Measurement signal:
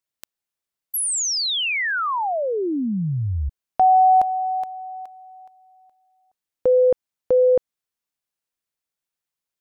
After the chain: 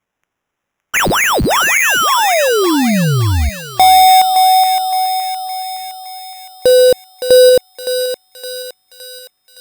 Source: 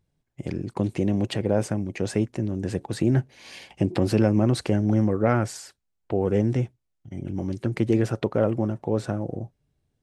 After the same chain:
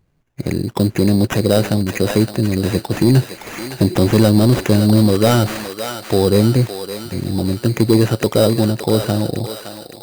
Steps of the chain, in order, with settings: in parallel at -11 dB: sine folder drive 8 dB, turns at -6.5 dBFS; on the sum: sample-rate reducer 4.4 kHz, jitter 0%; thinning echo 565 ms, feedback 58%, high-pass 830 Hz, level -6 dB; trim +4 dB

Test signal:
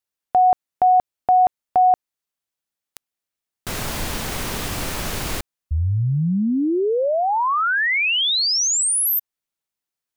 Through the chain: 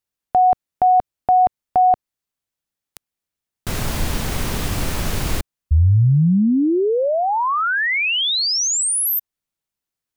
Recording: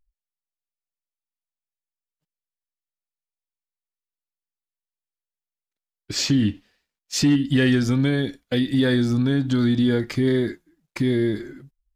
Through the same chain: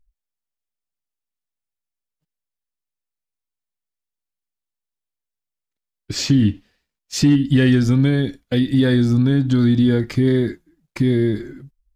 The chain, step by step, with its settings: bass shelf 240 Hz +8 dB

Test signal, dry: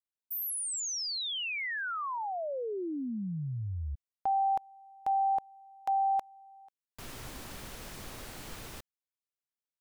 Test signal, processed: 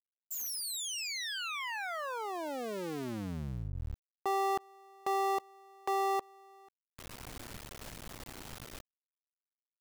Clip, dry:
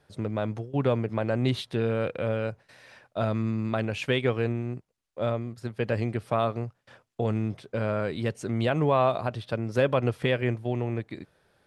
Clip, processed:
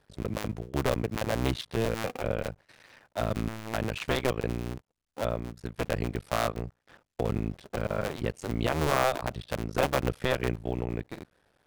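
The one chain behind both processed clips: cycle switcher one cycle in 2, muted

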